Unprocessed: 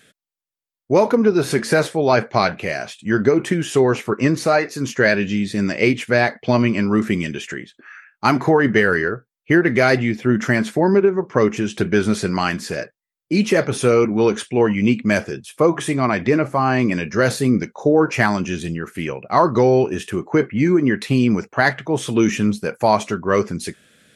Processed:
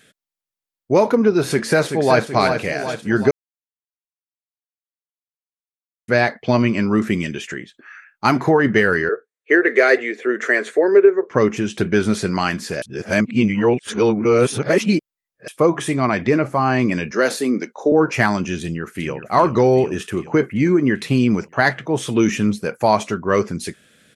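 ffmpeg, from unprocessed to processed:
ffmpeg -i in.wav -filter_complex "[0:a]asplit=2[link_01][link_02];[link_02]afade=type=in:start_time=1.5:duration=0.01,afade=type=out:start_time=2.26:duration=0.01,aecho=0:1:380|760|1140|1520|1900|2280|2660|3040:0.421697|0.253018|0.151811|0.0910864|0.0546519|0.0327911|0.0196747|0.0118048[link_03];[link_01][link_03]amix=inputs=2:normalize=0,asettb=1/sr,asplit=3[link_04][link_05][link_06];[link_04]atrim=end=9.094[link_07];[link_05]atrim=start=9.09:end=11.31,asetpts=PTS-STARTPTS,afade=type=in:duration=0.004:curve=qsin,afade=type=out:start_time=2.216:duration=0.004:curve=qsin,highpass=frequency=360:width=0.5412,highpass=frequency=360:width=1.3066,equalizer=frequency=440:width_type=q:width=4:gain=10,equalizer=frequency=880:width_type=q:width=4:gain=-9,equalizer=frequency=1800:width_type=q:width=4:gain=6,equalizer=frequency=3000:width_type=q:width=4:gain=-4,equalizer=frequency=5200:width_type=q:width=4:gain=-10,lowpass=frequency=9200:width=0.5412,lowpass=frequency=9200:width=1.3066[link_08];[link_06]atrim=start=11.306[link_09];[link_07][link_08]acrossfade=duration=0.004:curve1=hsin:curve2=qsin[link_10];[link_10][link_09]acrossfade=duration=0.004:curve1=qsin:curve2=hsin,asettb=1/sr,asplit=3[link_11][link_12][link_13];[link_11]atrim=end=17.114[link_14];[link_12]atrim=start=17.11:end=17.92,asetpts=PTS-STARTPTS,afade=type=in:duration=0.004:curve=qsin,afade=type=out:start_time=0.806:duration=0.004:curve=qsin,highpass=frequency=240:width=0.5412,highpass=frequency=240:width=1.3066[link_15];[link_13]atrim=start=17.916[link_16];[link_14][link_15]acrossfade=duration=0.004:curve1=hsin:curve2=qsin[link_17];[link_17][link_16]acrossfade=duration=0.004:curve1=qsin:curve2=hsin,asplit=2[link_18][link_19];[link_19]afade=type=in:start_time=18.6:duration=0.01,afade=type=out:start_time=19.14:duration=0.01,aecho=0:1:390|780|1170|1560|1950|2340|2730|3120|3510|3900:0.316228|0.221359|0.154952|0.108466|0.0759263|0.0531484|0.0372039|0.0260427|0.0182299|0.0127609[link_20];[link_18][link_20]amix=inputs=2:normalize=0,asplit=5[link_21][link_22][link_23][link_24][link_25];[link_21]atrim=end=3.31,asetpts=PTS-STARTPTS,afade=type=out:start_time=3.306:duration=0.004:curve=hsin[link_26];[link_22]atrim=start=3.31:end=6.08,asetpts=PTS-STARTPTS,volume=0[link_27];[link_23]atrim=start=6.08:end=12.822,asetpts=PTS-STARTPTS,afade=type=in:duration=0.004:curve=hsin[link_28];[link_24]atrim=start=12.818:end=15.482,asetpts=PTS-STARTPTS,areverse[link_29];[link_25]atrim=start=15.478[link_30];[link_26][link_27][link_28]concat=n=3:v=0:a=1[link_31];[link_31][link_29]acrossfade=duration=0.004:curve1=hsin:curve2=hsin[link_32];[link_32][link_30]acrossfade=duration=0.004:curve1=hsin:curve2=hsin" out.wav

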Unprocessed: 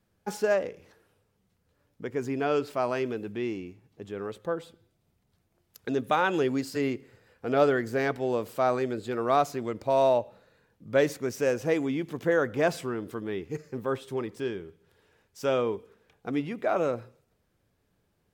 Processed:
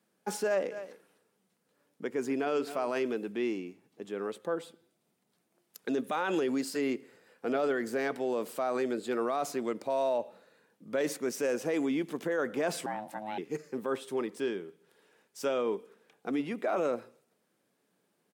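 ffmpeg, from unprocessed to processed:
ffmpeg -i in.wav -filter_complex "[0:a]asplit=3[link_01][link_02][link_03];[link_01]afade=type=out:start_time=0.7:duration=0.02[link_04];[link_02]aecho=1:1:257:0.15,afade=type=in:start_time=0.7:duration=0.02,afade=type=out:start_time=2.97:duration=0.02[link_05];[link_03]afade=type=in:start_time=2.97:duration=0.02[link_06];[link_04][link_05][link_06]amix=inputs=3:normalize=0,asettb=1/sr,asplit=3[link_07][link_08][link_09];[link_07]atrim=end=12.864[link_10];[link_08]atrim=start=12.86:end=13.38,asetpts=PTS-STARTPTS,afade=type=in:duration=0.004:curve=qsin,afade=type=out:start_time=0.516:duration=0.004:curve=qsin,aeval=exprs='val(0)*sin(2*PI*430*n/s)':channel_layout=same[link_11];[link_09]atrim=start=13.376[link_12];[link_10][link_11]acrossfade=duration=0.004:curve1=hsin:curve2=qsin[link_13];[link_13][link_12]acrossfade=duration=0.004:curve1=qsin:curve2=hsin,alimiter=limit=-22dB:level=0:latency=1:release=14,highpass=frequency=190:width=0.5412,highpass=frequency=190:width=1.3066,equalizer=frequency=9200:width=2.1:gain=5.5" out.wav

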